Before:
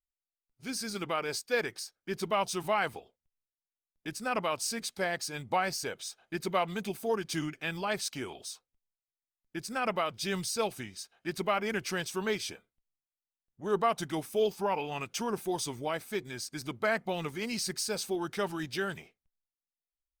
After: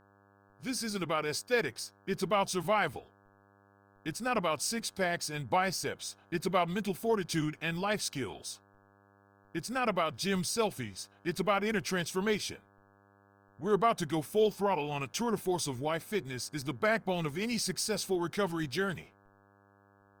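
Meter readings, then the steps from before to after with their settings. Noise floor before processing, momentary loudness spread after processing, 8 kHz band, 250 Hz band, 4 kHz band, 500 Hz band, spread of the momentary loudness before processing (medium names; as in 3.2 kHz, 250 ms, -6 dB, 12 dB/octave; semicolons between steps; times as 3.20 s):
under -85 dBFS, 10 LU, 0.0 dB, +2.5 dB, 0.0 dB, +1.0 dB, 10 LU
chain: bass shelf 160 Hz +8 dB; mains buzz 100 Hz, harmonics 17, -64 dBFS -2 dB/octave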